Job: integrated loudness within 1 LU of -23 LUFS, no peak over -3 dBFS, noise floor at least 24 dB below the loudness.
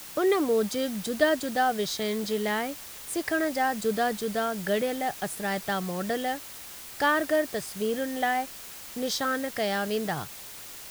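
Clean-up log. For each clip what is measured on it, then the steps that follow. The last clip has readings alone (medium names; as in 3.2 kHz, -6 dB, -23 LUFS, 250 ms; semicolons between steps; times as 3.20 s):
noise floor -43 dBFS; noise floor target -52 dBFS; loudness -28.0 LUFS; peak level -10.0 dBFS; loudness target -23.0 LUFS
-> noise print and reduce 9 dB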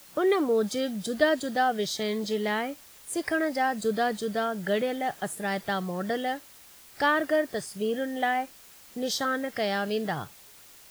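noise floor -52 dBFS; noise floor target -53 dBFS
-> noise print and reduce 6 dB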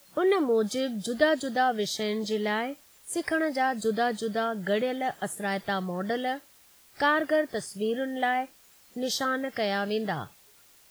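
noise floor -58 dBFS; loudness -28.5 LUFS; peak level -10.5 dBFS; loudness target -23.0 LUFS
-> trim +5.5 dB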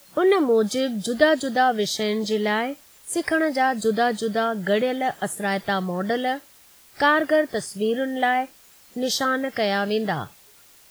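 loudness -23.0 LUFS; peak level -5.0 dBFS; noise floor -52 dBFS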